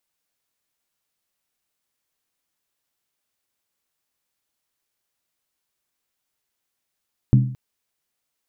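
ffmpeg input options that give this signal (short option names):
-f lavfi -i "aevalsrc='0.398*pow(10,-3*t/0.53)*sin(2*PI*128*t)+0.178*pow(10,-3*t/0.42)*sin(2*PI*204*t)+0.0794*pow(10,-3*t/0.363)*sin(2*PI*273.4*t)+0.0355*pow(10,-3*t/0.35)*sin(2*PI*293.9*t)+0.0158*pow(10,-3*t/0.325)*sin(2*PI*339.6*t)':d=0.22:s=44100"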